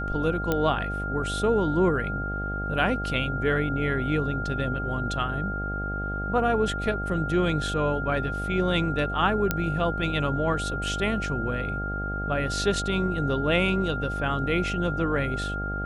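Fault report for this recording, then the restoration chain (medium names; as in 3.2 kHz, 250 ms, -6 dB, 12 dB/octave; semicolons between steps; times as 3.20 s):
buzz 50 Hz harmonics 16 -32 dBFS
whine 1.4 kHz -31 dBFS
0.52 s: pop -11 dBFS
9.51 s: pop -8 dBFS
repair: de-click; de-hum 50 Hz, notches 16; band-stop 1.4 kHz, Q 30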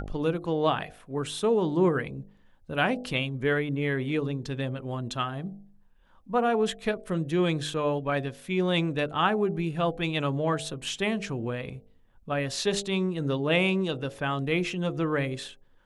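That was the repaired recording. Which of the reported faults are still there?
nothing left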